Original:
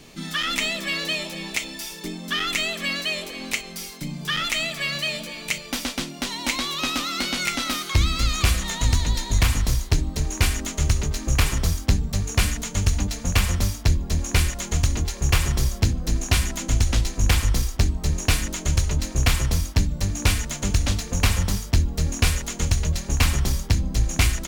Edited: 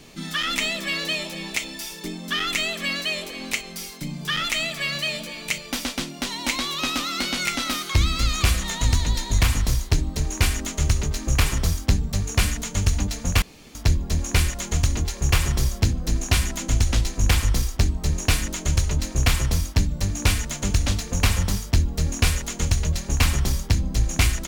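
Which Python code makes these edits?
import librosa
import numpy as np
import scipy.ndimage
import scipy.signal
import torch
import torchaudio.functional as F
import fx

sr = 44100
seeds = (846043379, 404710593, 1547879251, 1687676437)

y = fx.edit(x, sr, fx.room_tone_fill(start_s=13.42, length_s=0.33), tone=tone)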